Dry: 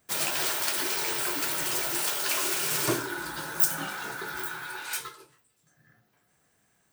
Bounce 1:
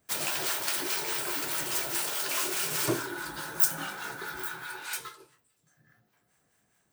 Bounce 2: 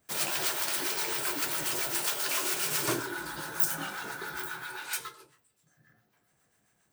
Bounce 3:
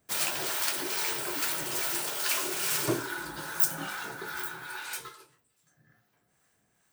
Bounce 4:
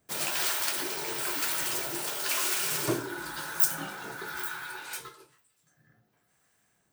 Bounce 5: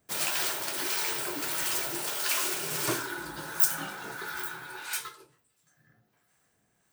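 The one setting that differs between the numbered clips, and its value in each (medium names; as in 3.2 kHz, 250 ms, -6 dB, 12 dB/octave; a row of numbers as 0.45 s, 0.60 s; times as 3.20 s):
harmonic tremolo, rate: 4.8 Hz, 7.4 Hz, 2.4 Hz, 1 Hz, 1.5 Hz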